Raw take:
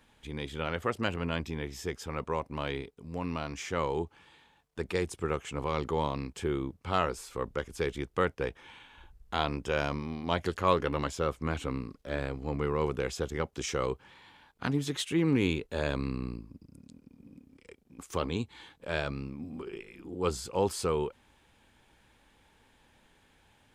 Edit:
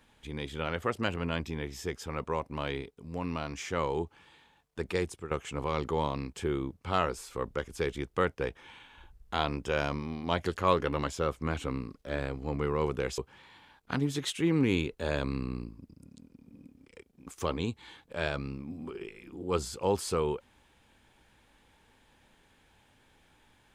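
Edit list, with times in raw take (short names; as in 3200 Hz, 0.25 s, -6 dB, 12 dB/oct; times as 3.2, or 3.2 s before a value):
5.03–5.31 fade out, to -13 dB
13.18–13.9 cut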